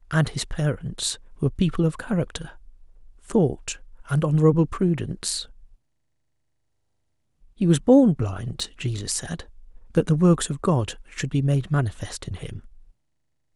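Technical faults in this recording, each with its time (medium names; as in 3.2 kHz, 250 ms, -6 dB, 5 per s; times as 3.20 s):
8.60 s: dropout 2.1 ms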